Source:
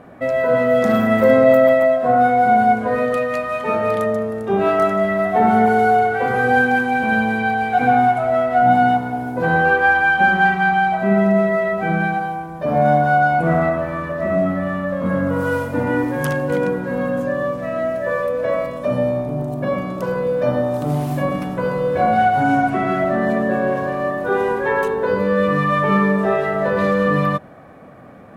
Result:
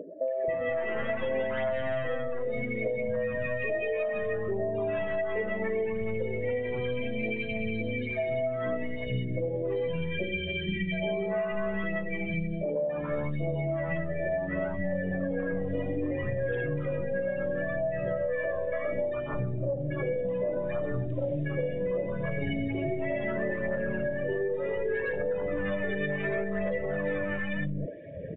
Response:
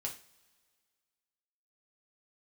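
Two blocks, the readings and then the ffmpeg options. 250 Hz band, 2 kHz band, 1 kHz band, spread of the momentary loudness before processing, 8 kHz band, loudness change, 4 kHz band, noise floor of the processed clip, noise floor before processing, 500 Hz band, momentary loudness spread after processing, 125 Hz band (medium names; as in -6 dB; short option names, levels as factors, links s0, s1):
-14.0 dB, -15.0 dB, -26.0 dB, 8 LU, no reading, -13.5 dB, -8.0 dB, -34 dBFS, -29 dBFS, -11.0 dB, 2 LU, -9.5 dB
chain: -filter_complex "[0:a]acompressor=mode=upward:threshold=0.0708:ratio=2.5,afftfilt=real='re*(1-between(b*sr/4096,670,1600))':imag='im*(1-between(b*sr/4096,670,1600))':win_size=4096:overlap=0.75,aeval=exprs='(tanh(5.62*val(0)+0.3)-tanh(0.3))/5.62':c=same,aphaser=in_gain=1:out_gain=1:delay=3.9:decay=0.43:speed=0.68:type=triangular,equalizer=f=240:t=o:w=0.28:g=-10.5,acrossover=split=240|810[s0][s1][s2];[s2]adelay=280[s3];[s0]adelay=480[s4];[s4][s1][s3]amix=inputs=3:normalize=0,afftdn=nr=14:nf=-33,acompressor=threshold=0.0501:ratio=12" -ar 8000 -c:a libmp3lame -b:a 24k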